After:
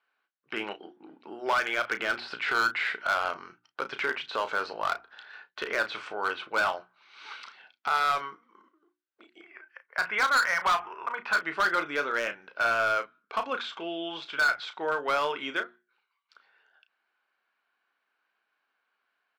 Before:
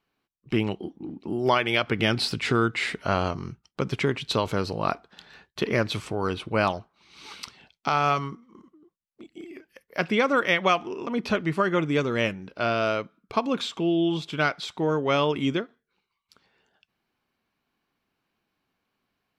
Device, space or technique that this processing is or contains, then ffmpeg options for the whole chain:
megaphone: -filter_complex "[0:a]asettb=1/sr,asplit=3[link_01][link_02][link_03];[link_01]atrim=end=9.414[link_04];[link_02]atrim=start=9.41:end=11.38,asetpts=PTS-STARTPTS,afade=type=in:duration=0.004:curve=qsin,afade=type=out:start_time=1.966:duration=0.004:curve=qsin,equalizer=frequency=125:width_type=o:width=1:gain=10,equalizer=frequency=250:width_type=o:width=1:gain=-12,equalizer=frequency=500:width_type=o:width=1:gain=-5,equalizer=frequency=1000:width_type=o:width=1:gain=6,equalizer=frequency=2000:width_type=o:width=1:gain=3,equalizer=frequency=4000:width_type=o:width=1:gain=-9,equalizer=frequency=8000:width_type=o:width=1:gain=-10[link_05];[link_03]atrim=start=11.376[link_06];[link_04][link_05]acrossfade=duration=0.004:curve1=hsin:curve2=qsin[link_07];[link_07][link_06]acrossfade=duration=0.004:curve1=qsin:curve2=hsin,deesser=0.85,highpass=660,lowpass=3500,equalizer=frequency=1500:width_type=o:width=0.32:gain=10,asoftclip=type=hard:threshold=-20.5dB,bandreject=frequency=60:width_type=h:width=6,bandreject=frequency=120:width_type=h:width=6,bandreject=frequency=180:width_type=h:width=6,bandreject=frequency=240:width_type=h:width=6,bandreject=frequency=300:width_type=h:width=6,bandreject=frequency=360:width_type=h:width=6,asplit=2[link_08][link_09];[link_09]adelay=34,volume=-10dB[link_10];[link_08][link_10]amix=inputs=2:normalize=0"

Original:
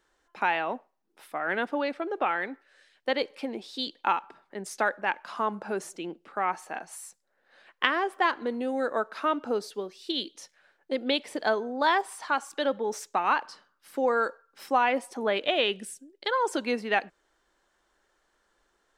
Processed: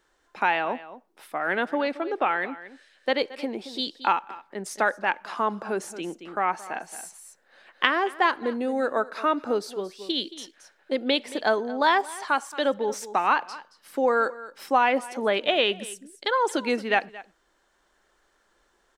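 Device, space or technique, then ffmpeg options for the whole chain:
ducked delay: -filter_complex "[0:a]asettb=1/sr,asplit=3[link_01][link_02][link_03];[link_01]atrim=end=8.394[link_04];[link_02]atrim=start=8.39:end=9.5,asetpts=PTS-STARTPTS,afade=type=in:duration=0.004:curve=qsin,afade=type=out:start_time=1.106:duration=0.004:curve=qsin,bandreject=frequency=3100:width=9.9[link_05];[link_03]atrim=start=9.496[link_06];[link_04][link_05]acrossfade=duration=0.004:curve1=hsin:curve2=qsin[link_07];[link_07][link_06]acrossfade=duration=0.004:curve1=qsin:curve2=hsin,asplit=3[link_08][link_09][link_10];[link_09]adelay=224,volume=-4.5dB[link_11];[link_10]apad=whole_len=846585[link_12];[link_11][link_12]sidechaincompress=threshold=-39dB:ratio=4:attack=7.8:release=667[link_13];[link_08][link_13]amix=inputs=2:normalize=0,volume=3dB"

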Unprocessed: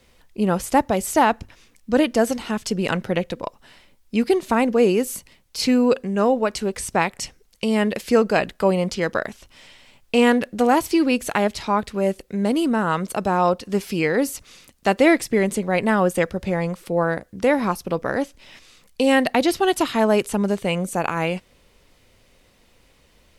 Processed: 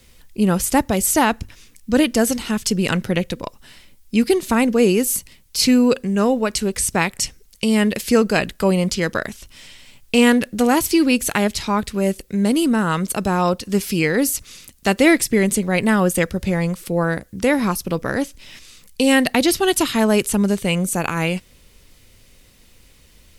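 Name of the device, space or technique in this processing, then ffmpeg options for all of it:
smiley-face EQ: -af "lowshelf=frequency=140:gain=5,equalizer=frequency=730:width_type=o:width=1.6:gain=-6,highshelf=frequency=6000:gain=9,volume=3.5dB"

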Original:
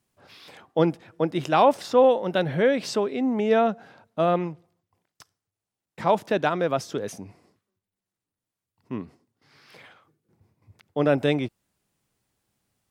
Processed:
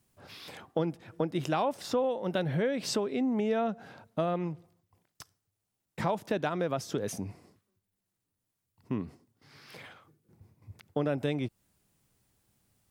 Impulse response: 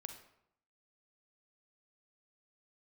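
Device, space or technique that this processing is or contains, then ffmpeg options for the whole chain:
ASMR close-microphone chain: -af "lowshelf=frequency=200:gain=7,acompressor=threshold=-28dB:ratio=4,highshelf=frequency=8000:gain=6.5"

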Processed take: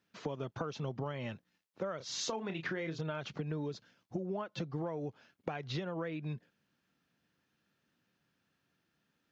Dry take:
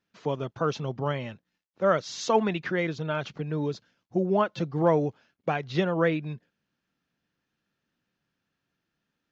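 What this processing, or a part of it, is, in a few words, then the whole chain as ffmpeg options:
serial compression, peaks first: -filter_complex "[0:a]highpass=61,asettb=1/sr,asplit=3[link_01][link_02][link_03];[link_01]atrim=end=1.974[link_04];[link_02]atrim=start=1.97:end=3.01,asetpts=PTS-STARTPTS,afade=type=in:duration=0.004:curve=qsin,afade=type=out:start_time=1.036:duration=0.004:curve=qsin,asplit=2[link_05][link_06];[link_06]adelay=31,volume=-8dB[link_07];[link_05][link_07]amix=inputs=2:normalize=0,atrim=end_sample=45864[link_08];[link_03]atrim=start=3.006[link_09];[link_04][link_08]acrossfade=duration=0.004:curve1=hsin:curve2=qsin[link_10];[link_10][link_09]acrossfade=duration=0.004:curve1=qsin:curve2=hsin,acompressor=threshold=-31dB:ratio=10,acompressor=threshold=-40dB:ratio=2,volume=2dB"

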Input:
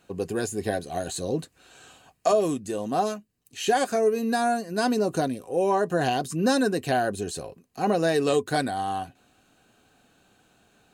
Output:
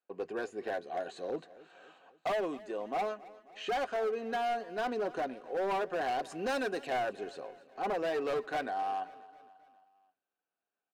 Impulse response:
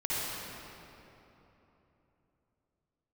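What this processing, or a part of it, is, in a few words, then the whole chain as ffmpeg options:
walkie-talkie: -filter_complex "[0:a]asettb=1/sr,asplit=3[link_01][link_02][link_03];[link_01]atrim=end=6.194[link_04];[link_02]atrim=start=6.19:end=6.87,asetpts=PTS-STARTPTS,afade=type=in:duration=0.004:curve=qsin,afade=type=out:start_time=0.676:duration=0.004:curve=qsin,aemphasis=mode=production:type=75kf[link_05];[link_03]atrim=start=6.866[link_06];[link_04][link_05]acrossfade=duration=0.004:curve1=hsin:curve2=qsin[link_07];[link_07][link_06]acrossfade=duration=0.004:curve1=qsin:curve2=hsin,highpass=450,lowpass=2300,asoftclip=type=hard:threshold=-25dB,agate=range=-24dB:threshold=-59dB:ratio=16:detection=peak,aecho=1:1:268|536|804|1072:0.106|0.0583|0.032|0.0176,bandreject=frequency=45.81:width_type=h:width=4,bandreject=frequency=91.62:width_type=h:width=4,volume=-4dB"

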